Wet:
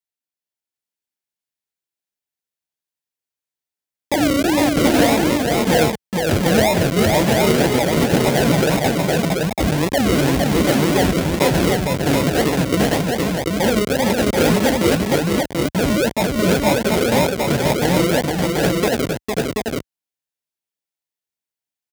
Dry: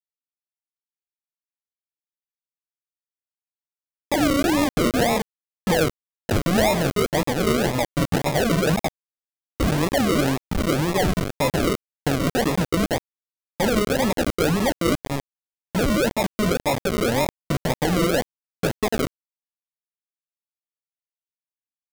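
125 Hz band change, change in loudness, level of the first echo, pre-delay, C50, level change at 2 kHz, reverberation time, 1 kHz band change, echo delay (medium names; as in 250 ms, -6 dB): +5.5 dB, +5.0 dB, -3.5 dB, no reverb, no reverb, +5.5 dB, no reverb, +5.0 dB, 458 ms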